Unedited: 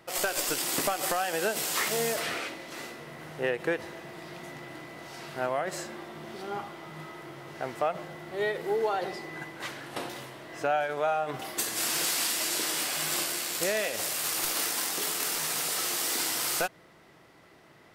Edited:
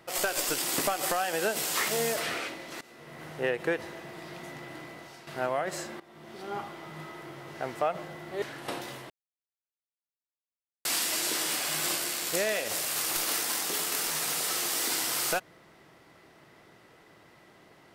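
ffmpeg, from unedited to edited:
ffmpeg -i in.wav -filter_complex "[0:a]asplit=7[link_01][link_02][link_03][link_04][link_05][link_06][link_07];[link_01]atrim=end=2.81,asetpts=PTS-STARTPTS,afade=type=out:start_time=2.806:duration=0.004:curve=hsin:silence=0.1[link_08];[link_02]atrim=start=2.81:end=5.27,asetpts=PTS-STARTPTS,afade=type=in:duration=0.42:silence=0.1,afade=type=out:start_time=2.08:duration=0.38:silence=0.298538[link_09];[link_03]atrim=start=5.27:end=6,asetpts=PTS-STARTPTS,afade=type=in:duration=0.004:curve=hsin:silence=0.298538,afade=type=out:start_time=0.726:duration=0.004:curve=hsin:silence=0.149624[link_10];[link_04]atrim=start=6:end=8.422,asetpts=PTS-STARTPTS,afade=type=in:duration=0.59:silence=0.149624[link_11];[link_05]atrim=start=9.698:end=10.38,asetpts=PTS-STARTPTS,afade=type=out:start_time=0.678:duration=0.004:curve=hsin[link_12];[link_06]atrim=start=10.38:end=12.13,asetpts=PTS-STARTPTS,volume=0[link_13];[link_07]atrim=start=12.13,asetpts=PTS-STARTPTS,afade=type=in:duration=0.004:curve=hsin[link_14];[link_08][link_09][link_10][link_11]concat=n=4:v=0:a=1[link_15];[link_12][link_13][link_14]concat=n=3:v=0:a=1[link_16];[link_15][link_16]acrossfade=duration=0.004:curve1=hsin:curve2=hsin" out.wav

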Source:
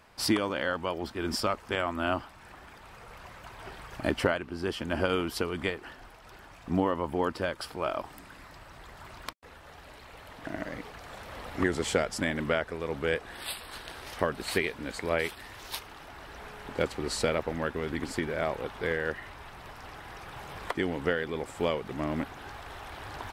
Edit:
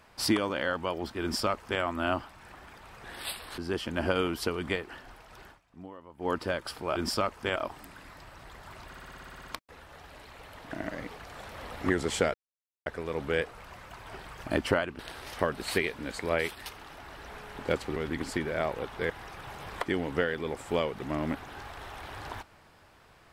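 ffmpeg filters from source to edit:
ffmpeg -i in.wav -filter_complex "[0:a]asplit=24[link_01][link_02][link_03][link_04][link_05][link_06][link_07][link_08][link_09][link_10][link_11][link_12][link_13][link_14][link_15][link_16][link_17][link_18][link_19][link_20][link_21][link_22][link_23][link_24];[link_01]atrim=end=3.042[link_25];[link_02]atrim=start=13.248:end=13.792[link_26];[link_03]atrim=start=4.518:end=6.54,asetpts=PTS-STARTPTS,afade=type=out:start_time=1.892:duration=0.13:silence=0.112202[link_27];[link_04]atrim=start=6.54:end=7.12,asetpts=PTS-STARTPTS,volume=-19dB[link_28];[link_05]atrim=start=7.12:end=7.902,asetpts=PTS-STARTPTS,afade=type=in:duration=0.13:silence=0.112202[link_29];[link_06]atrim=start=1.218:end=1.822[link_30];[link_07]atrim=start=7.898:end=9.272[link_31];[link_08]atrim=start=9.208:end=9.272[link_32];[link_09]atrim=start=9.208:end=9.272[link_33];[link_10]atrim=start=9.208:end=9.272[link_34];[link_11]atrim=start=9.208:end=9.272[link_35];[link_12]atrim=start=9.208:end=9.272[link_36];[link_13]atrim=start=9.208:end=9.272[link_37];[link_14]atrim=start=9.208:end=9.272[link_38];[link_15]atrim=start=9.208:end=9.272[link_39];[link_16]atrim=start=9.208:end=9.272[link_40];[link_17]atrim=start=9.208:end=12.08,asetpts=PTS-STARTPTS,afade=type=out:start_time=2.868:duration=0.004:curve=hsin[link_41];[link_18]atrim=start=12.08:end=12.6,asetpts=PTS-STARTPTS,volume=0[link_42];[link_19]atrim=start=12.6:end=13.252,asetpts=PTS-STARTPTS,afade=type=in:duration=0.004:curve=hsin[link_43];[link_20]atrim=start=3.038:end=4.522[link_44];[link_21]atrim=start=13.788:end=15.462[link_45];[link_22]atrim=start=15.758:end=17.062[link_46];[link_23]atrim=start=17.778:end=18.922[link_47];[link_24]atrim=start=19.988[link_48];[link_25][link_26]acrossfade=duration=0.004:curve1=hsin:curve2=hsin[link_49];[link_27][link_28][link_29]concat=n=3:v=0:a=1[link_50];[link_49][link_50]acrossfade=duration=0.004:curve1=hsin:curve2=hsin[link_51];[link_51][link_30]acrossfade=duration=0.004:curve1=hsin:curve2=hsin[link_52];[link_52][link_31]acrossfade=duration=0.004:curve1=hsin:curve2=hsin[link_53];[link_53][link_32]acrossfade=duration=0.004:curve1=hsin:curve2=hsin[link_54];[link_54][link_33]acrossfade=duration=0.004:curve1=hsin:curve2=hsin[link_55];[link_55][link_34]acrossfade=duration=0.004:curve1=hsin:curve2=hsin[link_56];[link_56][link_35]acrossfade=duration=0.004:curve1=hsin:curve2=hsin[link_57];[link_57][link_36]acrossfade=duration=0.004:curve1=hsin:curve2=hsin[link_58];[link_58][link_37]acrossfade=duration=0.004:curve1=hsin:curve2=hsin[link_59];[link_59][link_38]acrossfade=duration=0.004:curve1=hsin:curve2=hsin[link_60];[link_60][link_39]acrossfade=duration=0.004:curve1=hsin:curve2=hsin[link_61];[link_61][link_40]acrossfade=duration=0.004:curve1=hsin:curve2=hsin[link_62];[link_41][link_42][link_43]concat=n=3:v=0:a=1[link_63];[link_62][link_63]acrossfade=duration=0.004:curve1=hsin:curve2=hsin[link_64];[link_64][link_44]acrossfade=duration=0.004:curve1=hsin:curve2=hsin[link_65];[link_65][link_45]acrossfade=duration=0.004:curve1=hsin:curve2=hsin[link_66];[link_66][link_46]acrossfade=duration=0.004:curve1=hsin:curve2=hsin[link_67];[link_67][link_47]acrossfade=duration=0.004:curve1=hsin:curve2=hsin[link_68];[link_68][link_48]acrossfade=duration=0.004:curve1=hsin:curve2=hsin" out.wav

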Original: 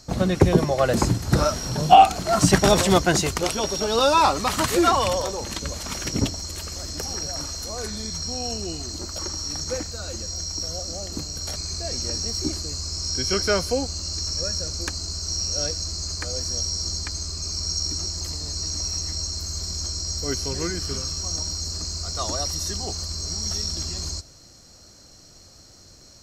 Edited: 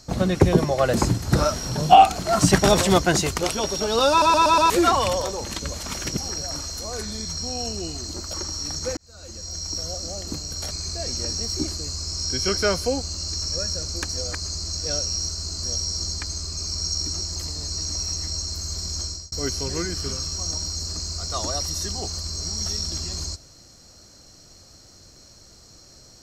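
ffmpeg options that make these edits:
ffmpeg -i in.wav -filter_complex "[0:a]asplit=11[link_01][link_02][link_03][link_04][link_05][link_06][link_07][link_08][link_09][link_10][link_11];[link_01]atrim=end=4.222[link_12];[link_02]atrim=start=4.098:end=4.222[link_13];[link_03]atrim=start=4.098:end=4.222[link_14];[link_04]atrim=start=4.098:end=4.222[link_15];[link_05]atrim=start=4.098:end=4.222[link_16];[link_06]atrim=start=4.698:end=6.172[link_17];[link_07]atrim=start=7.018:end=9.82,asetpts=PTS-STARTPTS,afade=type=out:start_time=2.798:duration=0.004:curve=hsin[link_18];[link_08]atrim=start=9.82:end=14.942,asetpts=PTS-STARTPTS,afade=type=in:duration=0.73[link_19];[link_09]atrim=start=14.938:end=16.482,asetpts=PTS-STARTPTS,areverse[link_20];[link_10]atrim=start=16.478:end=20.17,asetpts=PTS-STARTPTS,afade=type=out:start_time=3.422:duration=0.27[link_21];[link_11]atrim=start=20.17,asetpts=PTS-STARTPTS,afade=type=in:duration=0.004:curve=hsin[link_22];[link_12][link_13]acrossfade=duration=0.004:curve1=hsin:curve2=hsin[link_23];[link_23][link_14]acrossfade=duration=0.004:curve1=hsin:curve2=hsin[link_24];[link_24][link_15]acrossfade=duration=0.004:curve1=hsin:curve2=hsin[link_25];[link_25][link_16]acrossfade=duration=0.004:curve1=hsin:curve2=hsin[link_26];[link_26][link_17]acrossfade=duration=0.004:curve1=hsin:curve2=hsin[link_27];[link_18][link_19]concat=n=2:v=0:a=1[link_28];[link_27][link_28]acrossfade=duration=0.004:curve1=hsin:curve2=hsin[link_29];[link_29][link_20]acrossfade=duration=0.004:curve1=hsin:curve2=hsin[link_30];[link_21][link_22]concat=n=2:v=0:a=1[link_31];[link_30][link_31]acrossfade=duration=0.004:curve1=hsin:curve2=hsin" out.wav

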